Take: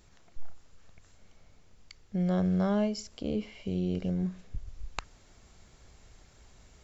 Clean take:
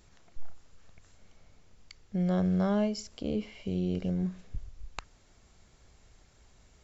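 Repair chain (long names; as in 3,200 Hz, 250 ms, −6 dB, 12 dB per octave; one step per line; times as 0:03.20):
level correction −3.5 dB, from 0:04.67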